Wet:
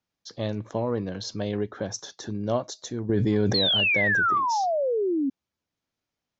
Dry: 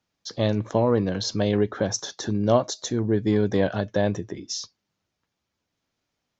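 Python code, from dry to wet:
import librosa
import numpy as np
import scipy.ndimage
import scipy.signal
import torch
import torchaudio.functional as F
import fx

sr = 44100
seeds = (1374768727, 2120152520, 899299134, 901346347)

y = fx.spec_paint(x, sr, seeds[0], shape='fall', start_s=3.54, length_s=1.76, low_hz=260.0, high_hz=4400.0, level_db=-18.0)
y = fx.env_flatten(y, sr, amount_pct=100, at=(3.09, 4.38))
y = y * librosa.db_to_amplitude(-6.5)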